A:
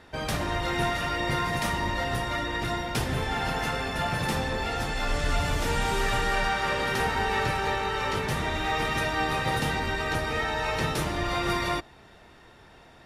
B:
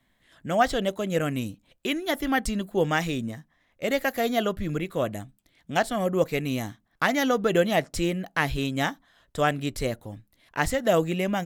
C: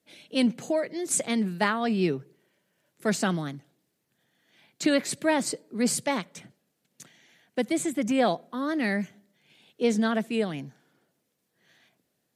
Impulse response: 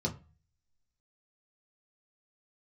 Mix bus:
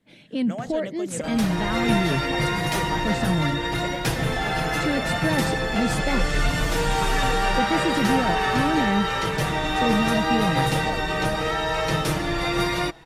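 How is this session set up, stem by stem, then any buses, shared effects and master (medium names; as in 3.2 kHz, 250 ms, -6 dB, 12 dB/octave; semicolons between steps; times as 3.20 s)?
-1.5 dB, 1.10 s, no send, comb 6.2 ms, depth 57%; level rider gain up to 4.5 dB; vibrato 0.78 Hz 25 cents
-6.0 dB, 0.00 s, no send, low-pass 10 kHz 24 dB/octave; compression, threshold -25 dBFS, peak gain reduction 10 dB
+1.0 dB, 0.00 s, no send, tone controls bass +12 dB, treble -10 dB; peak limiter -18.5 dBFS, peak gain reduction 11 dB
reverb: none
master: none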